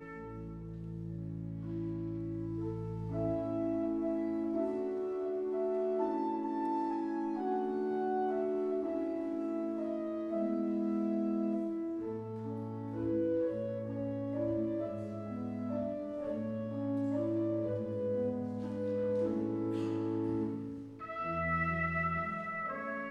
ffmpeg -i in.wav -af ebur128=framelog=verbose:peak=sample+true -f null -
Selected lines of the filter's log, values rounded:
Integrated loudness:
  I:         -35.8 LUFS
  Threshold: -45.8 LUFS
Loudness range:
  LRA:         2.5 LU
  Threshold: -55.7 LUFS
  LRA low:   -37.2 LUFS
  LRA high:  -34.7 LUFS
Sample peak:
  Peak:      -21.7 dBFS
True peak:
  Peak:      -21.7 dBFS